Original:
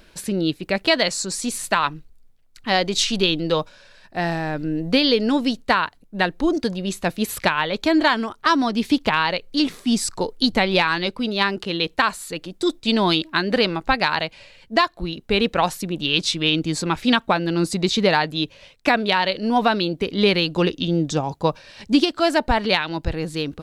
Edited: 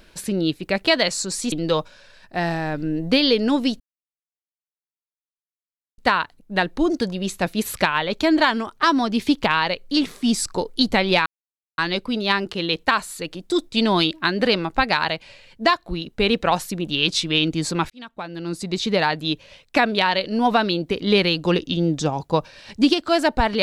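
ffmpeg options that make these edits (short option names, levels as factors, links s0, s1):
-filter_complex "[0:a]asplit=5[s0][s1][s2][s3][s4];[s0]atrim=end=1.522[s5];[s1]atrim=start=3.328:end=5.61,asetpts=PTS-STARTPTS,afade=t=out:st=2.278:d=0.004:c=hsin,apad=pad_dur=2.18[s6];[s2]atrim=start=5.61:end=10.89,asetpts=PTS-STARTPTS,afade=t=in:d=0.004:c=hsin,afade=t=out:st=5.276:d=0.004:c=hsin,apad=pad_dur=0.52[s7];[s3]atrim=start=10.89:end=17.01,asetpts=PTS-STARTPTS,afade=t=in:d=0.004:c=hsin,afade=t=out:st=6.116:d=0.004:c=hsin[s8];[s4]atrim=start=17.01,asetpts=PTS-STARTPTS,afade=t=in:d=1.4[s9];[s6][s7][s8][s9]concat=n=4:v=0:a=1[s10];[s5][s10]acrossfade=d=0.004:c1=hsin:c2=hsin"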